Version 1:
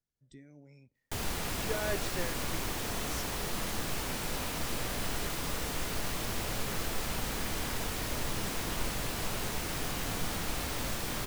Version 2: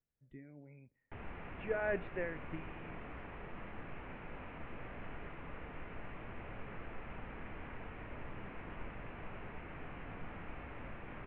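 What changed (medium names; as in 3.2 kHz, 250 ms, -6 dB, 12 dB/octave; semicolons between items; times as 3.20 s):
background -11.0 dB; master: add steep low-pass 2.6 kHz 48 dB/octave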